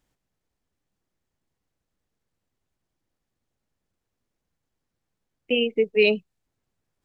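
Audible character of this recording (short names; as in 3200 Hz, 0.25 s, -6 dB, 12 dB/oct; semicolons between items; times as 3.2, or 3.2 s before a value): noise floor -82 dBFS; spectral tilt -2.0 dB/oct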